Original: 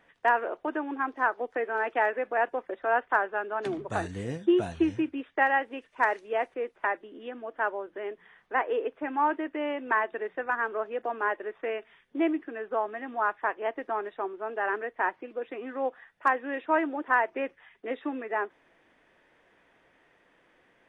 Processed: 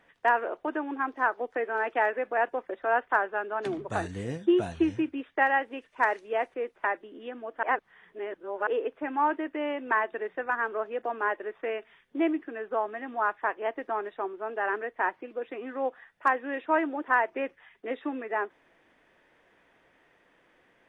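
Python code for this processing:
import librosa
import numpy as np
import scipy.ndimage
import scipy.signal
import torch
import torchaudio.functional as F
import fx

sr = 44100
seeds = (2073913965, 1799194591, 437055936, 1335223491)

y = fx.edit(x, sr, fx.reverse_span(start_s=7.63, length_s=1.04), tone=tone)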